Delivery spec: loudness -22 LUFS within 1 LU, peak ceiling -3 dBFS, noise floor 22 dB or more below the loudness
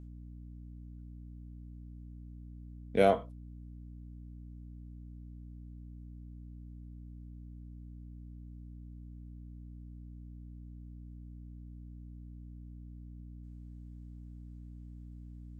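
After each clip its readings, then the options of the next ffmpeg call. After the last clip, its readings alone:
hum 60 Hz; harmonics up to 300 Hz; hum level -45 dBFS; loudness -42.0 LUFS; peak -10.5 dBFS; loudness target -22.0 LUFS
-> -af "bandreject=f=60:t=h:w=4,bandreject=f=120:t=h:w=4,bandreject=f=180:t=h:w=4,bandreject=f=240:t=h:w=4,bandreject=f=300:t=h:w=4"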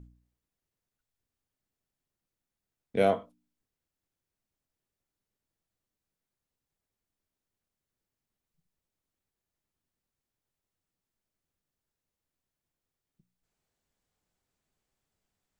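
hum none; loudness -29.0 LUFS; peak -10.5 dBFS; loudness target -22.0 LUFS
-> -af "volume=7dB"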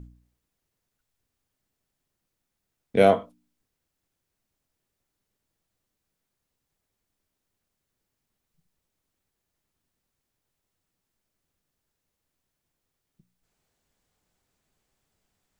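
loudness -22.0 LUFS; peak -3.5 dBFS; noise floor -83 dBFS

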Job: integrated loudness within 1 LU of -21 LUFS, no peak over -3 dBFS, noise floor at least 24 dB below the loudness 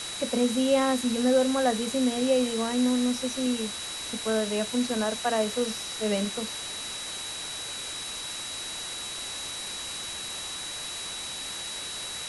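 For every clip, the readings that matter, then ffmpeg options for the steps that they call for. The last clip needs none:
steady tone 3900 Hz; tone level -37 dBFS; noise floor -36 dBFS; noise floor target -53 dBFS; loudness -28.5 LUFS; peak -12.0 dBFS; loudness target -21.0 LUFS
-> -af "bandreject=f=3.9k:w=30"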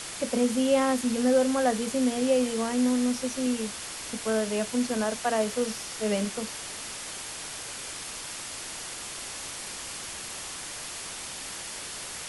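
steady tone none; noise floor -39 dBFS; noise floor target -53 dBFS
-> -af "afftdn=nr=14:nf=-39"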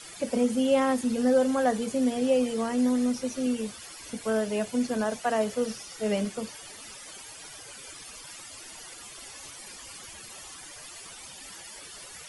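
noise floor -45 dBFS; noise floor target -52 dBFS
-> -af "afftdn=nr=7:nf=-45"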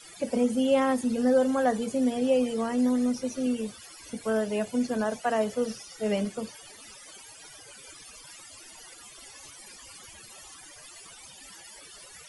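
noise floor -49 dBFS; noise floor target -51 dBFS
-> -af "afftdn=nr=6:nf=-49"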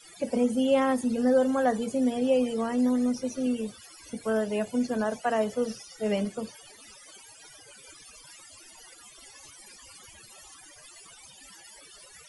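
noise floor -52 dBFS; loudness -27.0 LUFS; peak -12.5 dBFS; loudness target -21.0 LUFS
-> -af "volume=6dB"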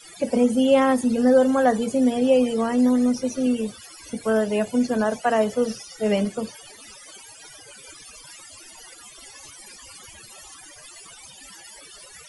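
loudness -21.0 LUFS; peak -6.5 dBFS; noise floor -46 dBFS

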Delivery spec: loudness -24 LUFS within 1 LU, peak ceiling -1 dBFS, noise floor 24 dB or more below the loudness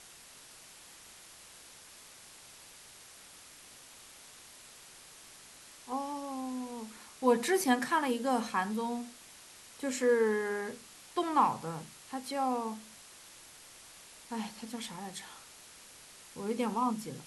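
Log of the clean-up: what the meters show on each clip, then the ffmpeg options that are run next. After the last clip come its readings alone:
noise floor -54 dBFS; noise floor target -57 dBFS; loudness -33.0 LUFS; peak -13.5 dBFS; loudness target -24.0 LUFS
-> -af "afftdn=nr=6:nf=-54"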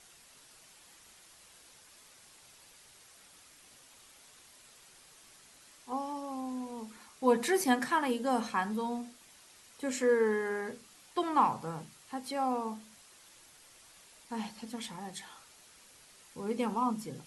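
noise floor -59 dBFS; loudness -33.0 LUFS; peak -13.5 dBFS; loudness target -24.0 LUFS
-> -af "volume=9dB"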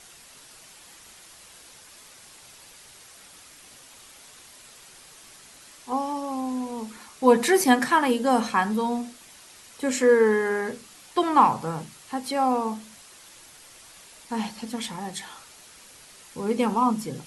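loudness -24.0 LUFS; peak -4.5 dBFS; noise floor -50 dBFS

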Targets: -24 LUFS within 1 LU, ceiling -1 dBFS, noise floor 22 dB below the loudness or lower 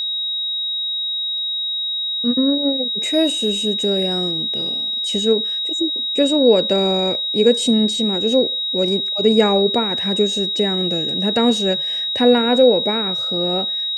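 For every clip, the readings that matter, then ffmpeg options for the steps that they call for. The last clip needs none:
steady tone 3800 Hz; tone level -20 dBFS; loudness -17.0 LUFS; peak -2.0 dBFS; loudness target -24.0 LUFS
-> -af "bandreject=f=3.8k:w=30"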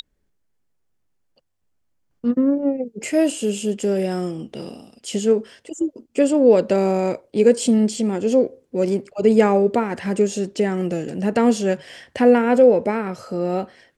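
steady tone none; loudness -19.5 LUFS; peak -2.5 dBFS; loudness target -24.0 LUFS
-> -af "volume=-4.5dB"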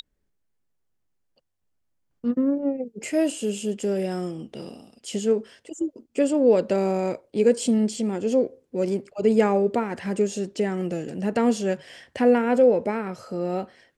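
loudness -24.0 LUFS; peak -7.0 dBFS; noise floor -73 dBFS

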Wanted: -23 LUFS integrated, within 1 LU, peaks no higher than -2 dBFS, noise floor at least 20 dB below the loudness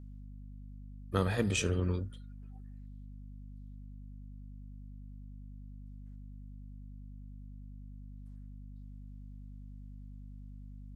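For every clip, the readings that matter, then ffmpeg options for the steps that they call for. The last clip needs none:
hum 50 Hz; harmonics up to 250 Hz; hum level -45 dBFS; loudness -41.5 LUFS; peak -15.0 dBFS; loudness target -23.0 LUFS
-> -af "bandreject=f=50:t=h:w=4,bandreject=f=100:t=h:w=4,bandreject=f=150:t=h:w=4,bandreject=f=200:t=h:w=4,bandreject=f=250:t=h:w=4"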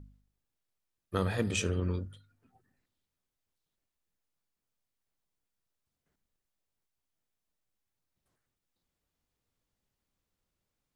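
hum none; loudness -33.0 LUFS; peak -15.5 dBFS; loudness target -23.0 LUFS
-> -af "volume=10dB"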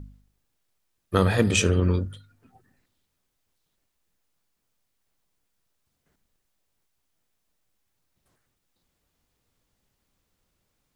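loudness -23.0 LUFS; peak -5.5 dBFS; noise floor -77 dBFS

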